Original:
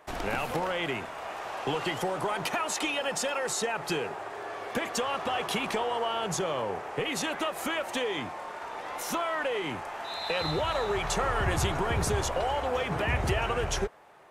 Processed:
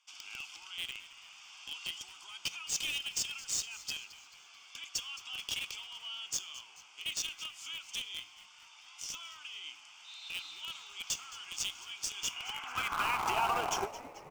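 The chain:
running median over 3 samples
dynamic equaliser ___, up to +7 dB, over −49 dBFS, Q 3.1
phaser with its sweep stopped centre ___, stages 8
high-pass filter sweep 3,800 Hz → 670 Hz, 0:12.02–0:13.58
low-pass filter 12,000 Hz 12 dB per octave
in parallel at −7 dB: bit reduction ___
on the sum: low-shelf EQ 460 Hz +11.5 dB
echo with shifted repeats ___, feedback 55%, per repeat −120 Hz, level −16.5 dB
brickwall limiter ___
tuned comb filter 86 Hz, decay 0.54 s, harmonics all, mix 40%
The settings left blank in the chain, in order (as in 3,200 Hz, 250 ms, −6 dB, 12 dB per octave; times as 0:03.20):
300 Hz, 2,700 Hz, 5 bits, 218 ms, −17.5 dBFS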